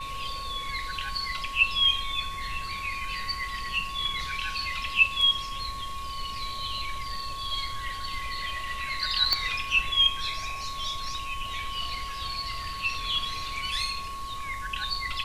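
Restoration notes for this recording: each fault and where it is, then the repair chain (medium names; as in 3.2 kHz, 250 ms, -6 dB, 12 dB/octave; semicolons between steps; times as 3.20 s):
whine 1.1 kHz -35 dBFS
9.33 s: pop -8 dBFS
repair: de-click; band-stop 1.1 kHz, Q 30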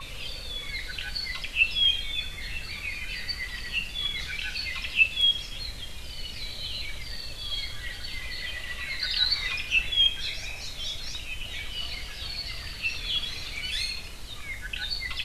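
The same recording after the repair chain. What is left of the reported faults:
nothing left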